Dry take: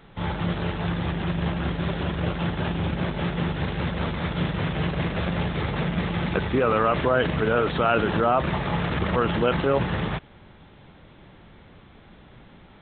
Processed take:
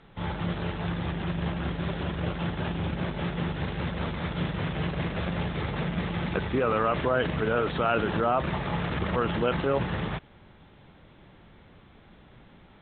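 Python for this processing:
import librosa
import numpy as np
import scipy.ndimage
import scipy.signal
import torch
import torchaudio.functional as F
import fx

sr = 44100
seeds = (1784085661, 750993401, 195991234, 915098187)

y = scipy.signal.sosfilt(scipy.signal.butter(2, 6500.0, 'lowpass', fs=sr, output='sos'), x)
y = F.gain(torch.from_numpy(y), -4.0).numpy()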